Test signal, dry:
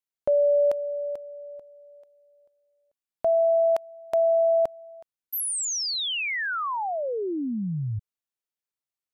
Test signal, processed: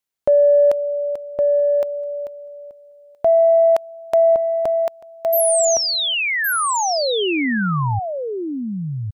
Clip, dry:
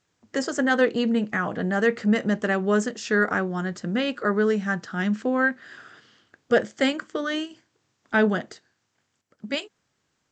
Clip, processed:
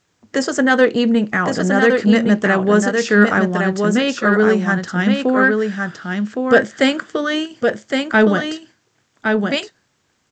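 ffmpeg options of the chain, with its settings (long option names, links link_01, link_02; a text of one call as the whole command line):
ffmpeg -i in.wav -af "acontrast=30,aecho=1:1:1114:0.596,volume=2.5dB" out.wav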